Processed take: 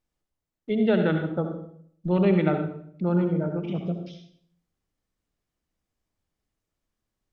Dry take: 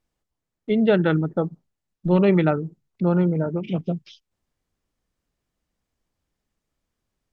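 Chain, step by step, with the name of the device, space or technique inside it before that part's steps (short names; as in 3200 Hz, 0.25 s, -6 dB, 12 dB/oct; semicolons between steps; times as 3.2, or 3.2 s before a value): bathroom (reverb RT60 0.60 s, pre-delay 61 ms, DRR 5 dB); gain -5 dB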